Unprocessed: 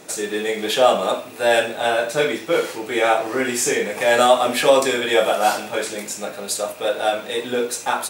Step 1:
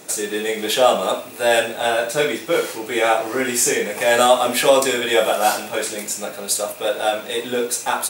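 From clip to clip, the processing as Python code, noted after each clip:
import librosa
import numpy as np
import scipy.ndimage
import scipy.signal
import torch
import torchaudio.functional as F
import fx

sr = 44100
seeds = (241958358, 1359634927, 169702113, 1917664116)

y = fx.high_shelf(x, sr, hz=7500.0, db=8.0)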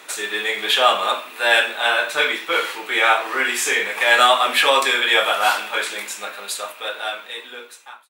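y = fx.fade_out_tail(x, sr, length_s=2.07)
y = scipy.signal.sosfilt(scipy.signal.butter(2, 310.0, 'highpass', fs=sr, output='sos'), y)
y = fx.band_shelf(y, sr, hz=1900.0, db=12.0, octaves=2.4)
y = y * librosa.db_to_amplitude(-6.0)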